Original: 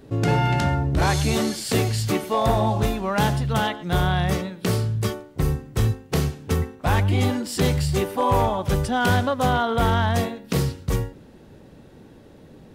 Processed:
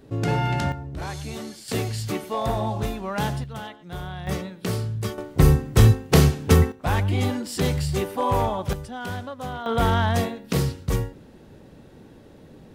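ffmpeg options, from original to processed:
ffmpeg -i in.wav -af "asetnsamples=nb_out_samples=441:pad=0,asendcmd='0.72 volume volume -12dB;1.68 volume volume -5dB;3.44 volume volume -13dB;4.27 volume volume -4dB;5.18 volume volume 7dB;6.72 volume volume -2.5dB;8.73 volume volume -12dB;9.66 volume volume -0.5dB',volume=-3dB" out.wav

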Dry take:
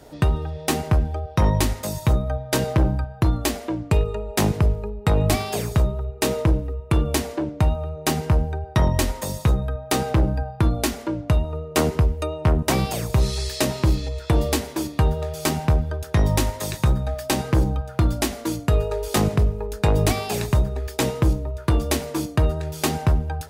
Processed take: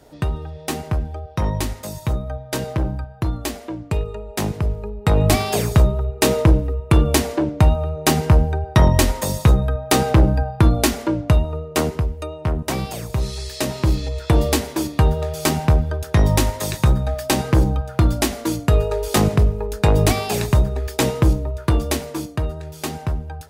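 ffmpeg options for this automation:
ffmpeg -i in.wav -af "volume=12dB,afade=type=in:start_time=4.62:duration=0.89:silence=0.375837,afade=type=out:start_time=11.11:duration=0.93:silence=0.375837,afade=type=in:start_time=13.48:duration=0.74:silence=0.473151,afade=type=out:start_time=21.46:duration=1:silence=0.398107" out.wav

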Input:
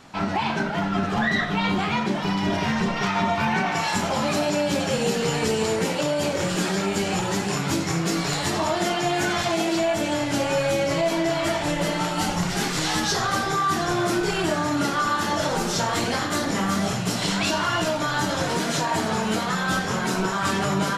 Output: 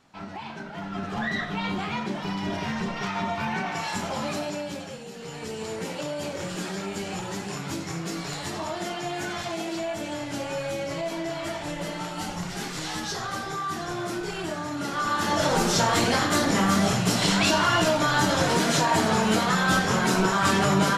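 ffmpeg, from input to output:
ffmpeg -i in.wav -af "volume=14.5dB,afade=type=in:start_time=0.64:duration=0.62:silence=0.446684,afade=type=out:start_time=4.26:duration=0.8:silence=0.237137,afade=type=in:start_time=5.06:duration=0.88:silence=0.298538,afade=type=in:start_time=14.81:duration=0.77:silence=0.316228" out.wav

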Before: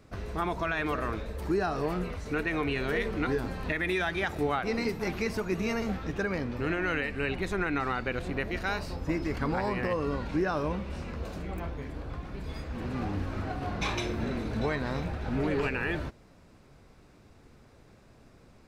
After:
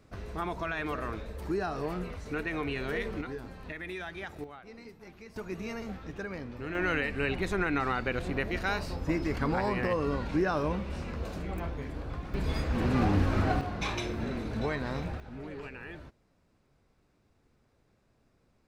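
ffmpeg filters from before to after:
ffmpeg -i in.wav -af "asetnsamples=nb_out_samples=441:pad=0,asendcmd='3.21 volume volume -10dB;4.44 volume volume -18.5dB;5.36 volume volume -7.5dB;6.75 volume volume 0.5dB;12.34 volume volume 7dB;13.61 volume volume -2dB;15.2 volume volume -13dB',volume=-3.5dB" out.wav

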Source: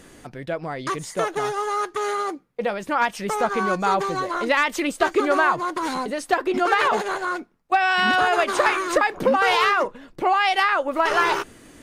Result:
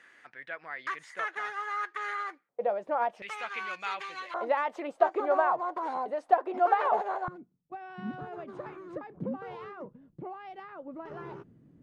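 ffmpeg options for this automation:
ffmpeg -i in.wav -af "asetnsamples=nb_out_samples=441:pad=0,asendcmd='2.49 bandpass f 640;3.22 bandpass f 2500;4.34 bandpass f 720;7.28 bandpass f 150',bandpass=frequency=1800:width_type=q:width=2.8:csg=0" out.wav

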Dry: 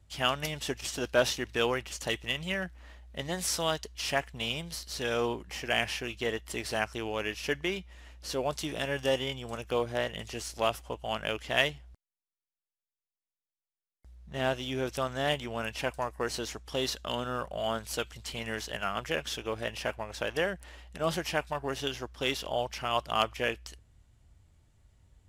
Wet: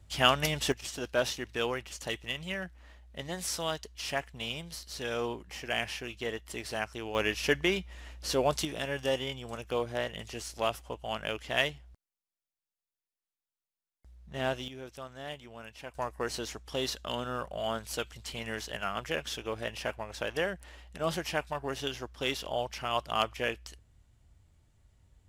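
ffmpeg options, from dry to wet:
ffmpeg -i in.wav -af "asetnsamples=nb_out_samples=441:pad=0,asendcmd='0.72 volume volume -3.5dB;7.15 volume volume 4dB;8.65 volume volume -2dB;14.68 volume volume -12dB;15.95 volume volume -1.5dB',volume=4.5dB" out.wav

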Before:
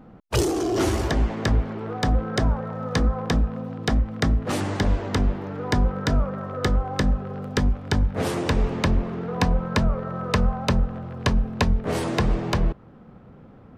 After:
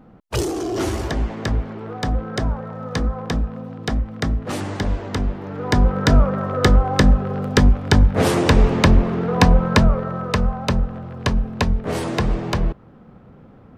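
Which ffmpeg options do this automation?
ffmpeg -i in.wav -af "volume=8dB,afade=type=in:start_time=5.37:duration=0.8:silence=0.375837,afade=type=out:start_time=9.68:duration=0.67:silence=0.473151" out.wav

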